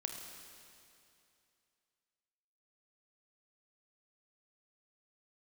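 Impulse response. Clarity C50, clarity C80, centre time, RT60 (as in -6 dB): 4.0 dB, 5.0 dB, 71 ms, 2.6 s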